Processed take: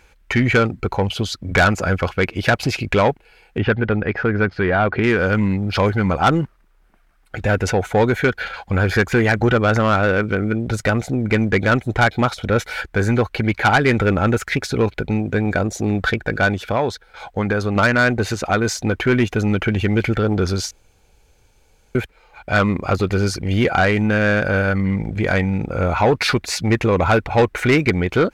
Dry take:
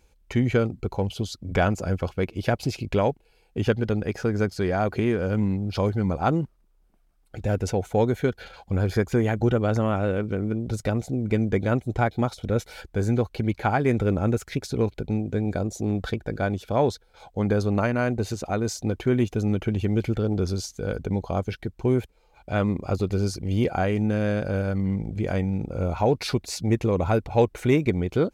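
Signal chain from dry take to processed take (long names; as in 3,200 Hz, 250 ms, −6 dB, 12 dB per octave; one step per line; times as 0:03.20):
parametric band 1,700 Hz +13 dB 1.8 octaves
0:16.51–0:17.76: downward compressor 2.5 to 1, threshold −23 dBFS, peak gain reduction 7.5 dB
soft clipping −14 dBFS, distortion −13 dB
0:03.58–0:05.04: high-frequency loss of the air 340 metres
0:20.71–0:21.95: fill with room tone
level +6 dB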